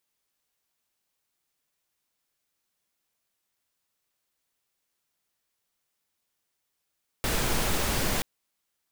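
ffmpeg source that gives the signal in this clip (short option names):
-f lavfi -i "anoisesrc=c=pink:a=0.243:d=0.98:r=44100:seed=1"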